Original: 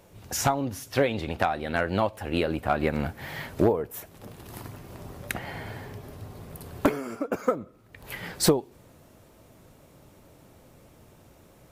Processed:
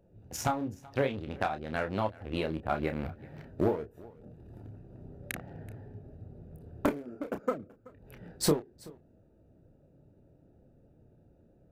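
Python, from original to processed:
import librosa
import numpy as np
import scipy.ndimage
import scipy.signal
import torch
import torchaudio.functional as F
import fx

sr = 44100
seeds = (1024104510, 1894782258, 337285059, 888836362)

y = fx.wiener(x, sr, points=41)
y = y + 10.0 ** (-22.5 / 20.0) * np.pad(y, (int(379 * sr / 1000.0), 0))[:len(y)]
y = fx.chorus_voices(y, sr, voices=2, hz=0.47, base_ms=29, depth_ms=3.7, mix_pct=30)
y = F.gain(torch.from_numpy(y), -3.0).numpy()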